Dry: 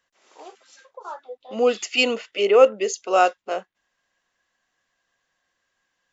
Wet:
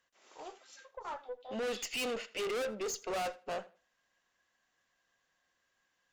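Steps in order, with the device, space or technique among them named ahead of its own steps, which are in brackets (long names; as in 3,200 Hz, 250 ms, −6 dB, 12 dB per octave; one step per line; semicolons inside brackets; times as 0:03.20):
rockabilly slapback (tube saturation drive 30 dB, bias 0.3; tape delay 82 ms, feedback 23%, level −17 dB, low-pass 5,100 Hz)
level −3.5 dB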